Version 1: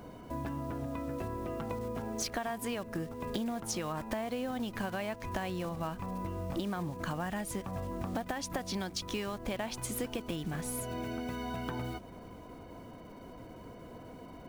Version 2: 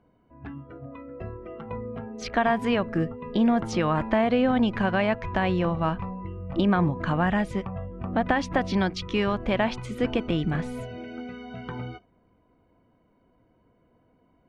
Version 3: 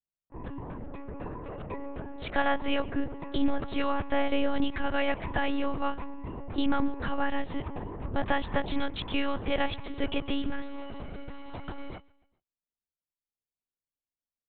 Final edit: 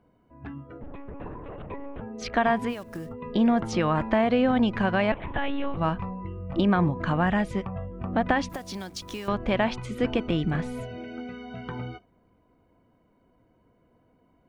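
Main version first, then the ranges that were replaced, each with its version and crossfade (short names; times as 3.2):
2
0.81–2.01 from 3
2.69–3.09 from 1, crossfade 0.10 s
5.12–5.77 from 3
8.49–9.28 from 1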